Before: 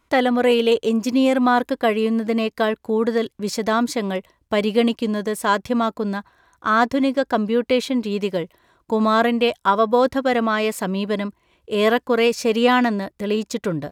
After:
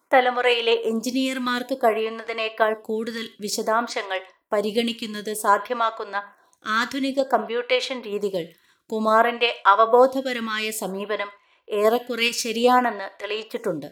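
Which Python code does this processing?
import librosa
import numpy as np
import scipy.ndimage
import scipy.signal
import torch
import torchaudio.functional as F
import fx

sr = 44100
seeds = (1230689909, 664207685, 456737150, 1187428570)

p1 = fx.highpass(x, sr, hz=700.0, slope=6)
p2 = fx.level_steps(p1, sr, step_db=10)
p3 = p1 + (p2 * librosa.db_to_amplitude(1.0))
p4 = fx.rev_gated(p3, sr, seeds[0], gate_ms=150, shape='falling', drr_db=11.5)
y = fx.stagger_phaser(p4, sr, hz=0.55)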